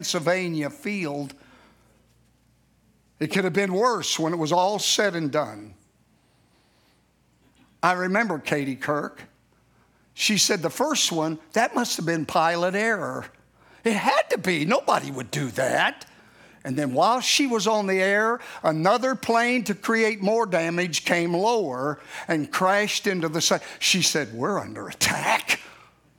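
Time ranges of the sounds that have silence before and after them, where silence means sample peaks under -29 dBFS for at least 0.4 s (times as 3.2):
3.21–5.52
7.83–9.2
10.19–13.26
13.86–16.02
16.65–25.56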